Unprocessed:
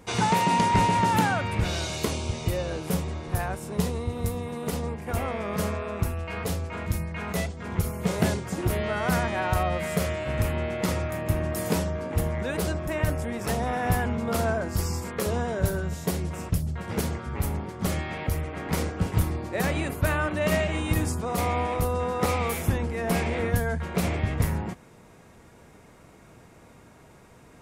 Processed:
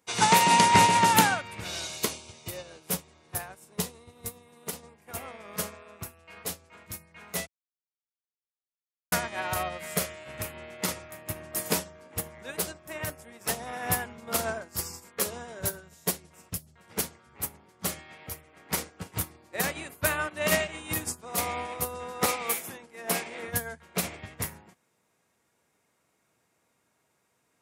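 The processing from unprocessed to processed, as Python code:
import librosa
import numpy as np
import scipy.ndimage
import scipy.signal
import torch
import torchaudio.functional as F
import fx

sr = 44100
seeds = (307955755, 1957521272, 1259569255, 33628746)

y = fx.highpass(x, sr, hz=190.0, slope=12, at=(22.26, 23.48))
y = fx.edit(y, sr, fx.silence(start_s=7.47, length_s=1.65), tone=tone)
y = scipy.signal.sosfilt(scipy.signal.butter(2, 74.0, 'highpass', fs=sr, output='sos'), y)
y = fx.tilt_eq(y, sr, slope=2.5)
y = fx.upward_expand(y, sr, threshold_db=-37.0, expansion=2.5)
y = y * librosa.db_to_amplitude(5.5)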